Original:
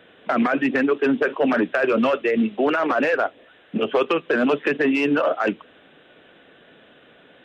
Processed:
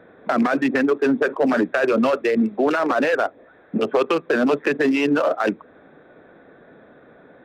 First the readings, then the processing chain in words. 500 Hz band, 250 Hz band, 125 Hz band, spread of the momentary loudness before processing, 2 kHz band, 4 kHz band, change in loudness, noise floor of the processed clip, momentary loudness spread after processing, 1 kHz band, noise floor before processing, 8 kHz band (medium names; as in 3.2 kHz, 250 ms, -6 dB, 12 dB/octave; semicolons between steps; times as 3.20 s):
+1.0 dB, +1.0 dB, +1.5 dB, 6 LU, -0.5 dB, -0.5 dB, +1.0 dB, -51 dBFS, 5 LU, +0.5 dB, -53 dBFS, no reading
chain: local Wiener filter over 15 samples; in parallel at -2.5 dB: compression, threshold -32 dBFS, peak gain reduction 15 dB